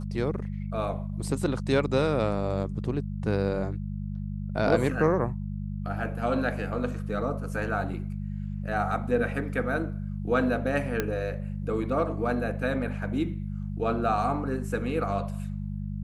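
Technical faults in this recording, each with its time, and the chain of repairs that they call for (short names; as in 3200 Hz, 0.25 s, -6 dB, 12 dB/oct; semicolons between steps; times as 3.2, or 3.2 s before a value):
hum 50 Hz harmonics 4 -33 dBFS
11 pop -12 dBFS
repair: de-click; de-hum 50 Hz, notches 4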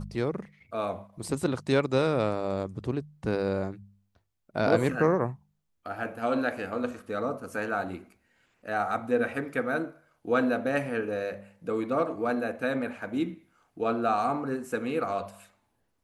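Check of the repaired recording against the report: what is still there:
none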